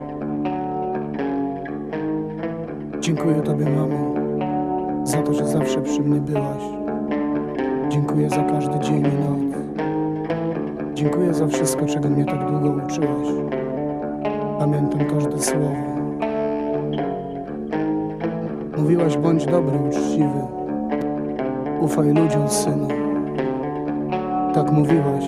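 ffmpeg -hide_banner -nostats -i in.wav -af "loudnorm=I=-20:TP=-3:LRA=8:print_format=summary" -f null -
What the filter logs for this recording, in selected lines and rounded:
Input Integrated:    -21.8 LUFS
Input True Peak:      -4.6 dBTP
Input LRA:             2.3 LU
Input Threshold:     -31.8 LUFS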